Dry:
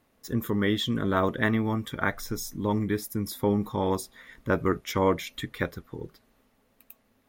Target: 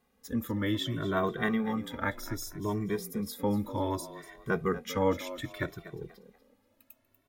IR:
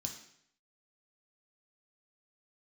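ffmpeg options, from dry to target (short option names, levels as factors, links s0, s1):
-filter_complex "[0:a]asplit=4[s0][s1][s2][s3];[s1]adelay=241,afreqshift=70,volume=0.188[s4];[s2]adelay=482,afreqshift=140,volume=0.0582[s5];[s3]adelay=723,afreqshift=210,volume=0.0182[s6];[s0][s4][s5][s6]amix=inputs=4:normalize=0,asplit=2[s7][s8];[s8]adelay=2.1,afreqshift=0.64[s9];[s7][s9]amix=inputs=2:normalize=1,volume=0.841"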